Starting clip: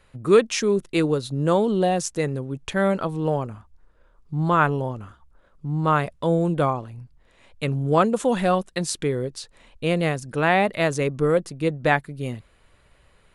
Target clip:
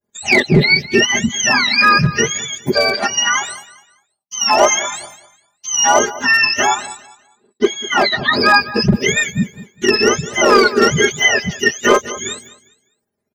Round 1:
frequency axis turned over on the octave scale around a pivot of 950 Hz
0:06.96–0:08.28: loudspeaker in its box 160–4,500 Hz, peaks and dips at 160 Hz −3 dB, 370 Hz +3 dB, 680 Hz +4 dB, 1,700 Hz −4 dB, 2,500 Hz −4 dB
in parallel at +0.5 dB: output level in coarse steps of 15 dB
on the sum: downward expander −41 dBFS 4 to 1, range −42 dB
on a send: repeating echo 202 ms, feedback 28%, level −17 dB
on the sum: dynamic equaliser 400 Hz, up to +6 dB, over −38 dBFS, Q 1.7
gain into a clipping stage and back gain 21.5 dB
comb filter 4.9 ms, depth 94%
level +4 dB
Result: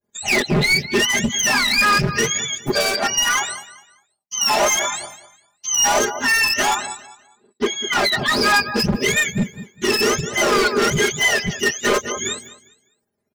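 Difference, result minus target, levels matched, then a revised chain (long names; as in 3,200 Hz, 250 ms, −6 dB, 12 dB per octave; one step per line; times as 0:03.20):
gain into a clipping stage and back: distortion +10 dB
frequency axis turned over on the octave scale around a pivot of 950 Hz
0:06.96–0:08.28: loudspeaker in its box 160–4,500 Hz, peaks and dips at 160 Hz −3 dB, 370 Hz +3 dB, 680 Hz +4 dB, 1,700 Hz −4 dB, 2,500 Hz −4 dB
in parallel at +0.5 dB: output level in coarse steps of 15 dB
on the sum: downward expander −41 dBFS 4 to 1, range −42 dB
on a send: repeating echo 202 ms, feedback 28%, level −17 dB
on the sum: dynamic equaliser 400 Hz, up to +6 dB, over −38 dBFS, Q 1.7
gain into a clipping stage and back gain 11 dB
comb filter 4.9 ms, depth 94%
level +4 dB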